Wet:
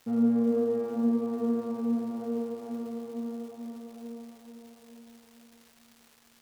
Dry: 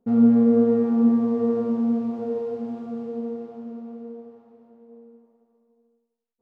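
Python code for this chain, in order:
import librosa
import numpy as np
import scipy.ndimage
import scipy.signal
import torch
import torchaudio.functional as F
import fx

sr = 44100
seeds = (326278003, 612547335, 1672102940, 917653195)

y = fx.low_shelf(x, sr, hz=130.0, db=-8.0)
y = fx.dmg_crackle(y, sr, seeds[0], per_s=520.0, level_db=-40.0)
y = fx.echo_feedback(y, sr, ms=448, feedback_pct=50, wet_db=-7)
y = y * librosa.db_to_amplitude(-6.5)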